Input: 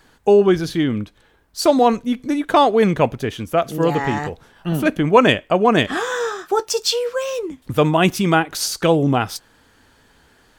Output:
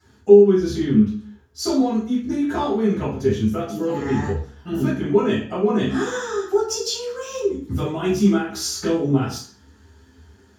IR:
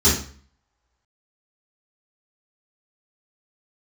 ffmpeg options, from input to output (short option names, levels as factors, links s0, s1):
-filter_complex "[0:a]acompressor=threshold=0.126:ratio=4,flanger=delay=8.4:depth=9.9:regen=42:speed=0.28:shape=triangular[s0];[1:a]atrim=start_sample=2205,afade=t=out:st=0.4:d=0.01,atrim=end_sample=18081[s1];[s0][s1]afir=irnorm=-1:irlink=0,volume=0.126"